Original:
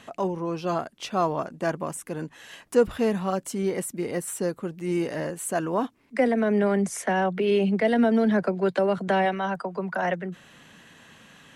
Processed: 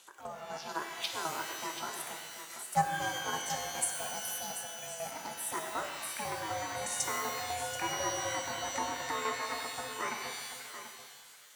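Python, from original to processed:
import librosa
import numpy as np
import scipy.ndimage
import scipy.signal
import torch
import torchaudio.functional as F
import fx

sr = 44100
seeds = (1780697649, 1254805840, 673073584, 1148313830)

p1 = fx.reverse_delay(x, sr, ms=384, wet_db=-12.0)
p2 = fx.tremolo_shape(p1, sr, shape='saw_down', hz=4.0, depth_pct=75)
p3 = fx.env_phaser(p2, sr, low_hz=310.0, high_hz=3400.0, full_db=-27.0)
p4 = fx.level_steps(p3, sr, step_db=18)
p5 = p3 + (p4 * librosa.db_to_amplitude(3.0))
p6 = fx.low_shelf(p5, sr, hz=170.0, db=-11.0)
p7 = p6 + fx.echo_single(p6, sr, ms=735, db=-11.5, dry=0)
p8 = p7 * np.sin(2.0 * np.pi * 320.0 * np.arange(len(p7)) / sr)
p9 = scipy.signal.sosfilt(scipy.signal.butter(2, 88.0, 'highpass', fs=sr, output='sos'), p8)
p10 = fx.tilt_eq(p9, sr, slope=4.0)
p11 = fx.rev_shimmer(p10, sr, seeds[0], rt60_s=1.4, semitones=12, shimmer_db=-2, drr_db=4.5)
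y = p11 * librosa.db_to_amplitude(-7.0)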